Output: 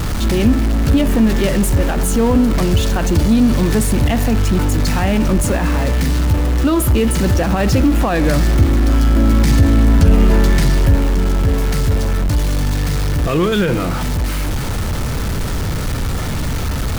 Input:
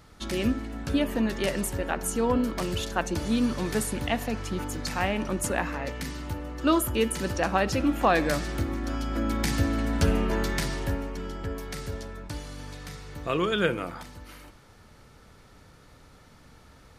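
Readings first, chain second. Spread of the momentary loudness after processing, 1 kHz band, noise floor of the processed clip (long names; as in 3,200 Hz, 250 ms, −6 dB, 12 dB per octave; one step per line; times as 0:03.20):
8 LU, +7.0 dB, −20 dBFS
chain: converter with a step at zero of −25 dBFS
brickwall limiter −15 dBFS, peak gain reduction 5.5 dB
low-shelf EQ 240 Hz +12 dB
level +4 dB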